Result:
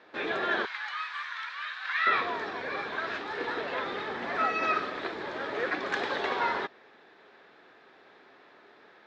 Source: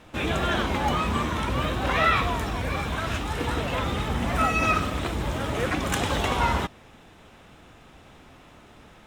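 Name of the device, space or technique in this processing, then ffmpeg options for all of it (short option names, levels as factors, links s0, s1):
phone earpiece: -filter_complex "[0:a]asettb=1/sr,asplit=3[s0][s1][s2];[s0]atrim=end=0.654[s3];[s1]atrim=start=0.65:end=2.07,asetpts=PTS-STARTPTS,afade=t=in:d=0.004:c=qsin,afade=t=out:st=1.416:d=0.004:c=qsin,highpass=f=1300:w=0.5412,highpass=f=1300:w=1.3066[s4];[s2]atrim=start=2.066[s5];[s3][s4]acrossfade=d=0.004:c1=hsin:c2=qsin[s6];[s6][s5]acrossfade=d=0.004:c1=qsin:c2=hsin,highpass=380,equalizer=f=400:t=q:w=4:g=8,equalizer=f=1700:t=q:w=4:g=8,equalizer=f=2900:t=q:w=4:g=-6,equalizer=f=4400:t=q:w=4:g=5,lowpass=f=4500:w=0.5412,lowpass=f=4500:w=1.3066,volume=0.562"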